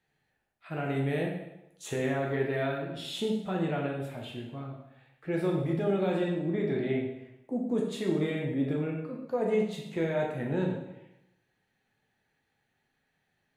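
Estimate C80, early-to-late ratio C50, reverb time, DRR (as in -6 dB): 6.5 dB, 3.5 dB, 0.90 s, -1.5 dB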